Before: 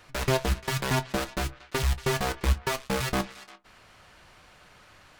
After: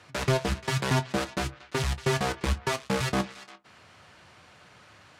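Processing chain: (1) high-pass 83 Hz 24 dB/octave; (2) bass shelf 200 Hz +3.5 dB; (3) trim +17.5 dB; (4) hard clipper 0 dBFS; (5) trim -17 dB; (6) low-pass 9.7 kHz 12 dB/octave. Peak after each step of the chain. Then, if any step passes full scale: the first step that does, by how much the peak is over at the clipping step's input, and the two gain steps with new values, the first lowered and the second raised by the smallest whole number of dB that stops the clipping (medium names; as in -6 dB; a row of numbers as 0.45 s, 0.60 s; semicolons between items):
-9.0 dBFS, -9.0 dBFS, +8.5 dBFS, 0.0 dBFS, -17.0 dBFS, -16.0 dBFS; step 3, 8.5 dB; step 3 +8.5 dB, step 5 -8 dB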